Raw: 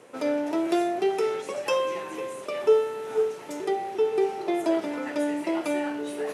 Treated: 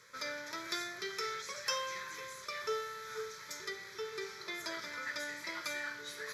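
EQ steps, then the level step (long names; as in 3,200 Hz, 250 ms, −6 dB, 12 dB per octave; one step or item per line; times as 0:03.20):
guitar amp tone stack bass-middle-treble 10-0-10
phaser with its sweep stopped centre 2,800 Hz, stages 6
+6.0 dB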